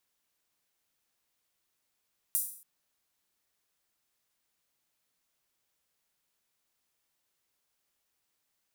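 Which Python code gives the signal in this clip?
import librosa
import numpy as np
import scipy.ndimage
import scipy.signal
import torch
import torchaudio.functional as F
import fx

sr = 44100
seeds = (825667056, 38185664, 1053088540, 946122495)

y = fx.drum_hat_open(sr, length_s=0.28, from_hz=9700.0, decay_s=0.52)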